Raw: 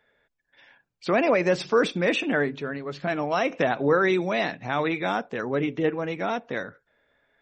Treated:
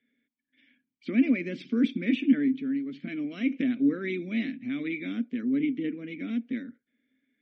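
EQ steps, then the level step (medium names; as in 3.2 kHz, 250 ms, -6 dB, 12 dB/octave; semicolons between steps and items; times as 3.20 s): vowel filter i; bass shelf 140 Hz +6.5 dB; peaking EQ 230 Hz +11.5 dB 0.35 oct; +3.5 dB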